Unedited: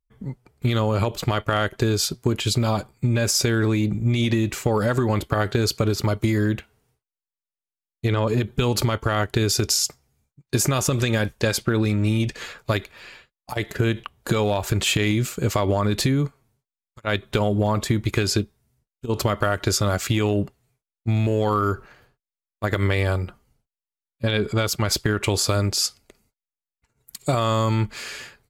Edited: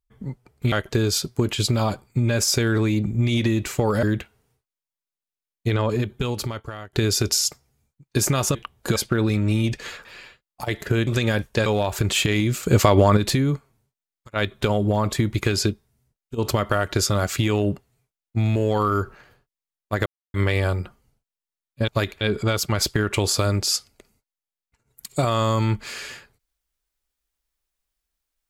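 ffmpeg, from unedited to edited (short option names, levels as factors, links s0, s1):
-filter_complex "[0:a]asplit=14[s0][s1][s2][s3][s4][s5][s6][s7][s8][s9][s10][s11][s12][s13];[s0]atrim=end=0.722[s14];[s1]atrim=start=1.588:end=4.902[s15];[s2]atrim=start=6.408:end=9.31,asetpts=PTS-STARTPTS,afade=t=out:st=1.742:d=1.16:silence=0.0841395[s16];[s3]atrim=start=9.31:end=10.932,asetpts=PTS-STARTPTS,afade=t=in:d=0.004:c=hsin:silence=0.0841395[s17];[s4]atrim=start=13.958:end=14.372[s18];[s5]atrim=start=11.518:end=12.612[s19];[s6]atrim=start=12.938:end=13.962[s20];[s7]atrim=start=10.928:end=11.522[s21];[s8]atrim=start=14.368:end=15.342[s22];[s9]atrim=start=15.338:end=15.882,asetpts=PTS-STARTPTS,volume=2[s23];[s10]atrim=start=15.878:end=22.77,asetpts=PTS-STARTPTS,afade=t=out:st=6.888:d=0.004:c=hsin,apad=pad_dur=0.28[s24];[s11]atrim=start=22.77:end=24.312,asetpts=PTS-STARTPTS,afade=t=in:d=0.004:c=hsin[s25];[s12]atrim=start=12.608:end=12.942[s26];[s13]atrim=start=24.308[s27];[s14][s15]acrossfade=d=0.004:c1=hsin:c2=hsin[s28];[s16][s17]concat=n=2:v=0:a=1[s29];[s28][s29]acrossfade=d=0.004:c1=hsin:c2=hsin[s30];[s30][s18]acrossfade=d=0.004:c1=hsin:c2=hsin[s31];[s31][s19]acrossfade=d=0.004:c1=hsin:c2=hsin[s32];[s32][s20]acrossfade=d=0.004:c1=hsin:c2=hsin[s33];[s33][s21]acrossfade=d=0.004:c1=hsin:c2=hsin[s34];[s34][s22]acrossfade=d=0.004:c1=hsin:c2=hsin[s35];[s35][s23]acrossfade=d=0.004:c1=hsin:c2=hsin[s36];[s24][s25]concat=n=2:v=0:a=1[s37];[s36][s37]acrossfade=d=0.004:c1=hsin:c2=hsin[s38];[s38][s26]acrossfade=d=0.004:c1=hsin:c2=hsin[s39];[s39][s27]acrossfade=d=0.004:c1=hsin:c2=hsin"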